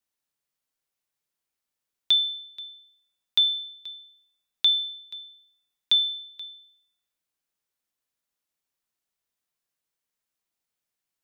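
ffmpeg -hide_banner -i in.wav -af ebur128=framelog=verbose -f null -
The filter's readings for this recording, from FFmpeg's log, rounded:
Integrated loudness:
  I:         -22.9 LUFS
  Threshold: -35.9 LUFS
Loudness range:
  LRA:         4.8 LU
  Threshold: -47.6 LUFS
  LRA low:   -29.8 LUFS
  LRA high:  -25.1 LUFS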